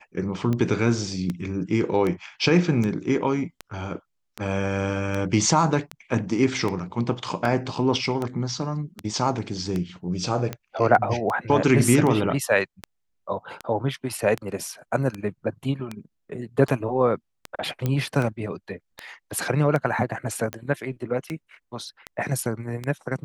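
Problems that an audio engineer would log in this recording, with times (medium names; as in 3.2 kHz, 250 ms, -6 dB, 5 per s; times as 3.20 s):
tick 78 rpm -15 dBFS
17.86 s: pop -12 dBFS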